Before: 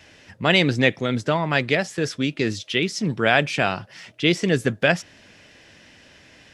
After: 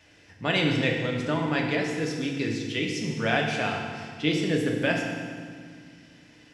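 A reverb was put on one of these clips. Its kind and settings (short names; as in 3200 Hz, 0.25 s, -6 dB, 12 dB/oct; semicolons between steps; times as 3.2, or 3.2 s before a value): FDN reverb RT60 1.9 s, low-frequency decay 1.55×, high-frequency decay 0.85×, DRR -0.5 dB; gain -9 dB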